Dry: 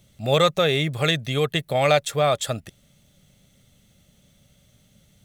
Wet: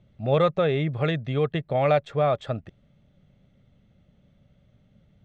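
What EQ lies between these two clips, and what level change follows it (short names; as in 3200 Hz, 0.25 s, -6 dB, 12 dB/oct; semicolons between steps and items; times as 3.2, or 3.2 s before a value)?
tape spacing loss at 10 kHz 27 dB; high shelf 4500 Hz -11.5 dB; 0.0 dB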